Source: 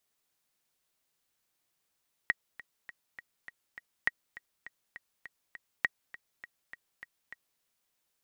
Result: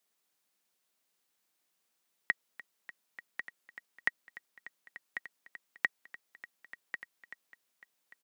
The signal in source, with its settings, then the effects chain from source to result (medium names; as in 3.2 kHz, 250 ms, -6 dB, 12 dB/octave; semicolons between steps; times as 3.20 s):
metronome 203 bpm, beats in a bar 6, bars 3, 1.9 kHz, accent 19 dB -12.5 dBFS
high-pass 160 Hz 24 dB/octave; on a send: delay 1094 ms -9.5 dB